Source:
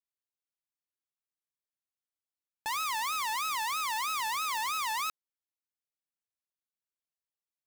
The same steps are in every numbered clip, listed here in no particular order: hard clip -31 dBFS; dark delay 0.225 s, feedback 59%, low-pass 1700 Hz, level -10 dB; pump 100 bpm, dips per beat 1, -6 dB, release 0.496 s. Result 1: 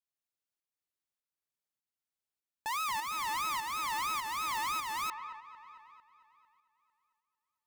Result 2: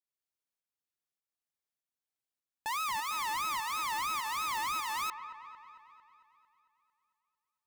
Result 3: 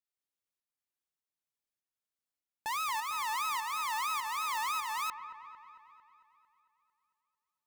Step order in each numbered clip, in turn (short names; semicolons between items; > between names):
dark delay > hard clip > pump; pump > dark delay > hard clip; hard clip > pump > dark delay